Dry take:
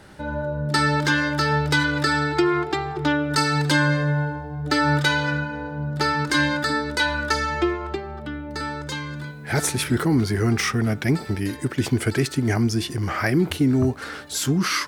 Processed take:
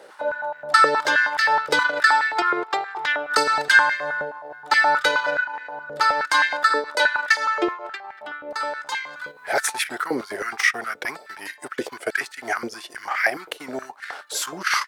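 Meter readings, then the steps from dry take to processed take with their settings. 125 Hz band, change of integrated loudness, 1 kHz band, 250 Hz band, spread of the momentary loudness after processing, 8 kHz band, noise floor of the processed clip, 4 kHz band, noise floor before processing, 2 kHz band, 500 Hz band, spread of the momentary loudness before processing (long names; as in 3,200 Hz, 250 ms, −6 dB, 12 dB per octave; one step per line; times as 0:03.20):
below −25 dB, +1.5 dB, +4.5 dB, −13.5 dB, 17 LU, −1.5 dB, −47 dBFS, −0.5 dB, −36 dBFS, +4.5 dB, −1.0 dB, 10 LU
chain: transient designer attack +1 dB, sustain −12 dB
high-pass on a step sequencer 9.5 Hz 500–1,900 Hz
level −1 dB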